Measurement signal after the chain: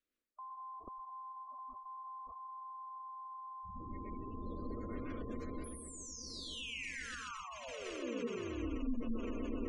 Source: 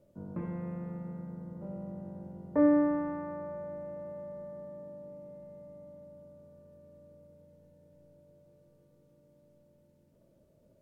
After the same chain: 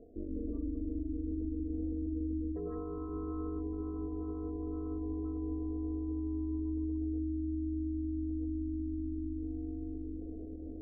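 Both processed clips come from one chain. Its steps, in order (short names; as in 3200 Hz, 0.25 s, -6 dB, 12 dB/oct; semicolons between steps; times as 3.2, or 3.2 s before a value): low shelf 110 Hz +2.5 dB; phaser 0.2 Hz, delay 1.1 ms, feedback 42%; on a send: swelling echo 0.128 s, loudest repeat 8, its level -13 dB; on the sum: plate-style reverb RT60 0.53 s, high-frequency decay 0.75×, pre-delay 0.1 s, DRR -4 dB; dynamic EQ 360 Hz, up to +6 dB, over -50 dBFS, Q 6.9; reverse; compressor 5:1, threshold -41 dBFS; reverse; ring modulator 120 Hz; spectral gate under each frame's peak -20 dB strong; limiter -38.5 dBFS; LPF 1600 Hz 6 dB/oct; fixed phaser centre 340 Hz, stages 4; gain +12 dB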